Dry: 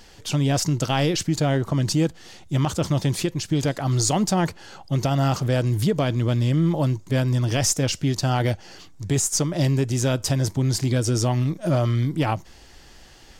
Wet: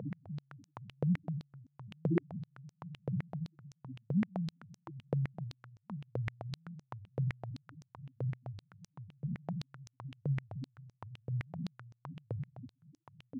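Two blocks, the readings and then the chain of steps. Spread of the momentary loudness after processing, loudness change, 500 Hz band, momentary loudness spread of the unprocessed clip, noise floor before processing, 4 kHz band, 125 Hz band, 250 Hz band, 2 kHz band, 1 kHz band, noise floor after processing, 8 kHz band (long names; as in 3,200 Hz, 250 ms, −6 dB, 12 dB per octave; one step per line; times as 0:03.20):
19 LU, −17.5 dB, −21.0 dB, 5 LU, −47 dBFS, −29.0 dB, −17.0 dB, −16.0 dB, −20.5 dB, −24.0 dB, −79 dBFS, below −40 dB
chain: spectrum smeared in time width 1,350 ms
in parallel at −4 dB: hard clipping −28 dBFS, distortion −8 dB
on the sum: brickwall limiter −18 dBFS, peak gain reduction 5 dB
parametric band 4,900 Hz −7.5 dB 1.7 octaves
on a send: feedback delay with all-pass diffusion 712 ms, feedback 65%, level −10 dB
on the sum: spectral peaks only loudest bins 2
high-pass on a step sequencer 7.8 Hz 490–5,900 Hz
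level +15.5 dB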